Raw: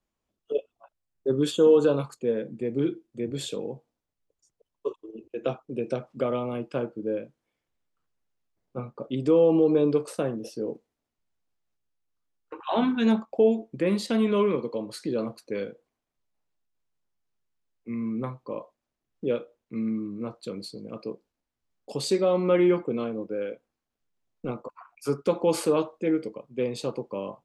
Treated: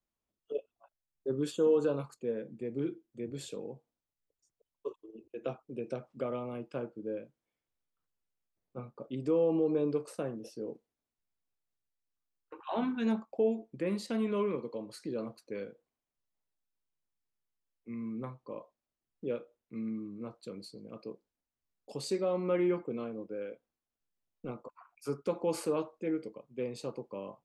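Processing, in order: dynamic bell 3.4 kHz, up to -6 dB, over -57 dBFS, Q 4.2; trim -8.5 dB

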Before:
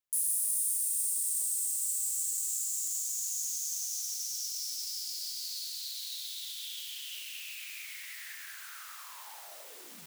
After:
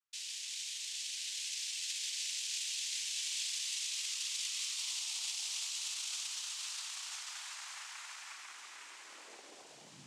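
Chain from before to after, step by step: dynamic bell 4.2 kHz, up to +6 dB, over -55 dBFS, Q 1.5; noise-vocoded speech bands 4; high-pass sweep 1.2 kHz -> 140 Hz, 4.70–6.69 s; trim -4 dB

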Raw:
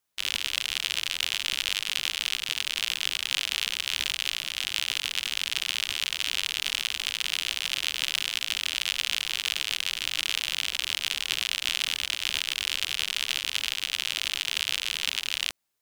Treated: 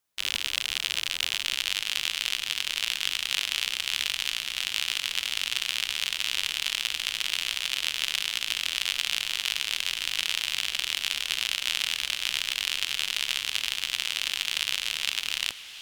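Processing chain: echo that smears into a reverb 1591 ms, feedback 47%, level -13.5 dB

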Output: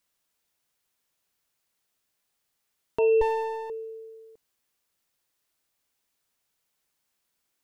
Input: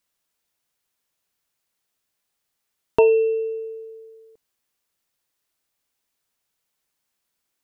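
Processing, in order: 3.21–3.70 s: comb filter that takes the minimum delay 3 ms; peak limiter -16 dBFS, peak gain reduction 11.5 dB

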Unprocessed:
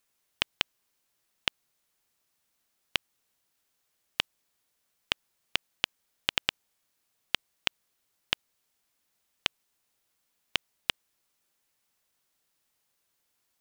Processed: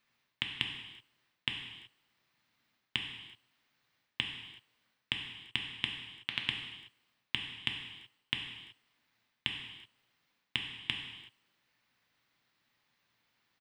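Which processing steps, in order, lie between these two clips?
ten-band graphic EQ 125 Hz +11 dB, 250 Hz +7 dB, 1 kHz +5 dB, 2 kHz +9 dB, 4 kHz +7 dB, 8 kHz -8 dB, 16 kHz -9 dB; reverse; compression 12:1, threshold -26 dBFS, peak gain reduction 14 dB; reverse; speakerphone echo 340 ms, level -29 dB; gated-style reverb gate 400 ms falling, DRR 1.5 dB; trim -4 dB

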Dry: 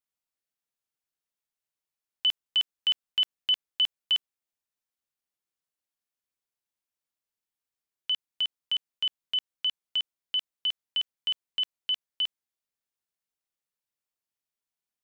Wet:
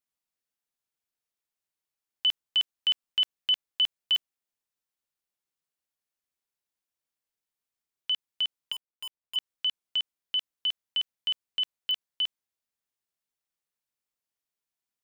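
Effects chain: 8.72–9.36 s: median filter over 25 samples; clicks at 4.15/11.91 s, -21 dBFS

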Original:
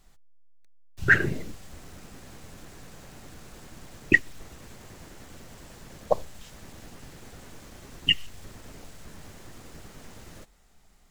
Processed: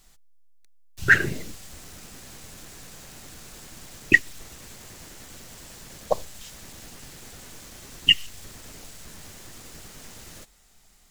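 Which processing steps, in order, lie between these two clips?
treble shelf 2.4 kHz +10.5 dB; trim -1 dB

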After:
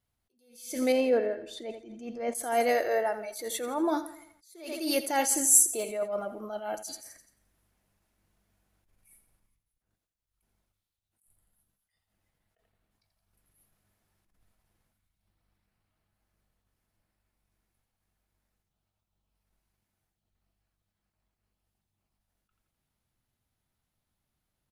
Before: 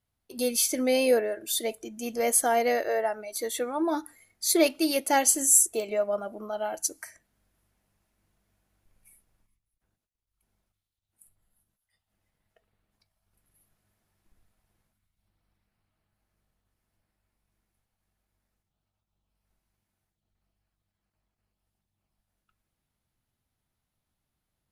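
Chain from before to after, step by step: 0.92–2.35 s: tape spacing loss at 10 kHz 26 dB; 6.91–7.11 s: spectral replace 290–4900 Hz both; feedback delay 85 ms, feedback 48%, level -14 dB; attacks held to a fixed rise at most 100 dB/s

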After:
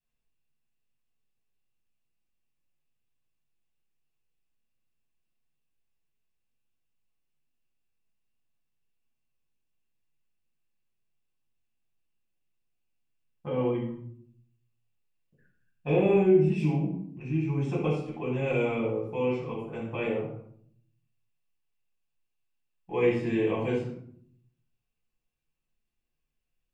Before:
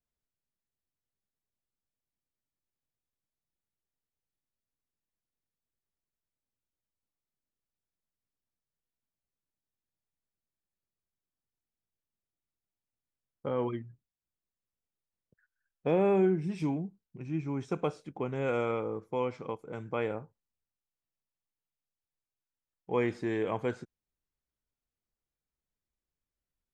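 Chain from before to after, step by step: peaking EQ 2.7 kHz +11.5 dB 0.39 oct; simulated room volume 960 m³, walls furnished, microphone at 9 m; dynamic bell 1.3 kHz, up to -6 dB, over -37 dBFS, Q 1.3; trim -8 dB

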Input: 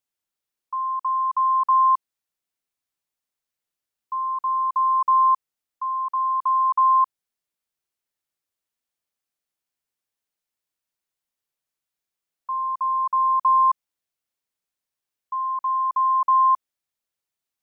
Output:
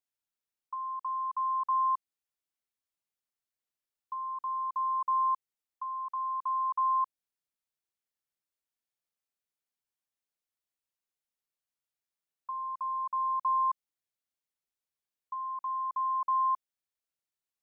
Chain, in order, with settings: dynamic bell 1.1 kHz, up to -3 dB, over -28 dBFS, Q 0.85; trim -7.5 dB

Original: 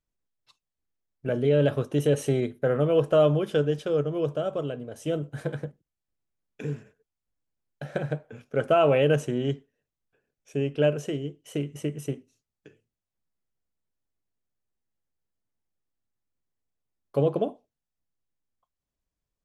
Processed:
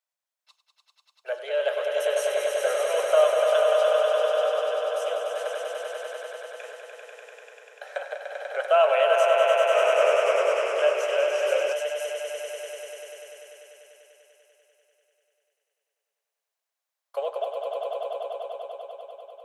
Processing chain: steep high-pass 560 Hz 48 dB/octave; echo with a slow build-up 98 ms, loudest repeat 5, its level -5.5 dB; 9.47–11.73 s: ever faster or slower copies 259 ms, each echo -1 st, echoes 3; trim +2 dB

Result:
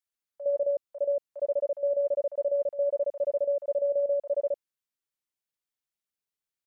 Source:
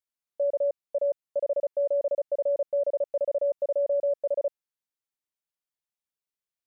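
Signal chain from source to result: bands offset in time highs, lows 60 ms, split 780 Hz

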